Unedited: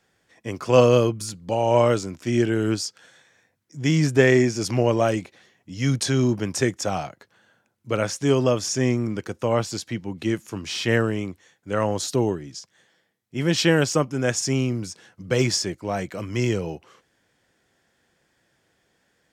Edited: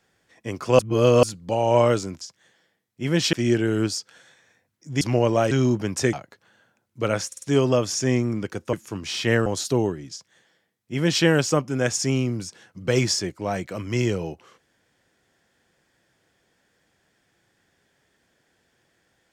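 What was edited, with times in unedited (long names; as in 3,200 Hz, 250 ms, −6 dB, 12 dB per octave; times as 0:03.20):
0:00.79–0:01.23: reverse
0:03.89–0:04.65: remove
0:05.15–0:06.09: remove
0:06.71–0:07.02: remove
0:08.16: stutter 0.05 s, 4 plays
0:09.47–0:10.34: remove
0:11.07–0:11.89: remove
0:12.55–0:13.67: duplicate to 0:02.21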